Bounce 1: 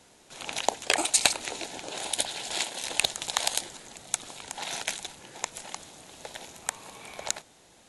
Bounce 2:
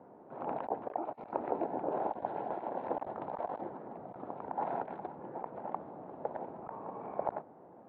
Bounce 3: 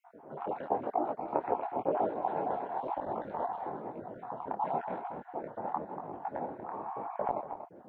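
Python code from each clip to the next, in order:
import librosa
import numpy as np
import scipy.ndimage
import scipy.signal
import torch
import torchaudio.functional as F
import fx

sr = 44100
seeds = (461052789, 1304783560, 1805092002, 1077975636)

y1 = scipy.signal.sosfilt(scipy.signal.butter(2, 170.0, 'highpass', fs=sr, output='sos'), x)
y1 = fx.over_compress(y1, sr, threshold_db=-34.0, ratio=-1.0)
y1 = scipy.signal.sosfilt(scipy.signal.butter(4, 1000.0, 'lowpass', fs=sr, output='sos'), y1)
y1 = y1 * 10.0 ** (3.5 / 20.0)
y2 = fx.spec_dropout(y1, sr, seeds[0], share_pct=35)
y2 = y2 + 10.0 ** (-10.0 / 20.0) * np.pad(y2, (int(237 * sr / 1000.0), 0))[:len(y2)]
y2 = fx.detune_double(y2, sr, cents=34)
y2 = y2 * 10.0 ** (9.0 / 20.0)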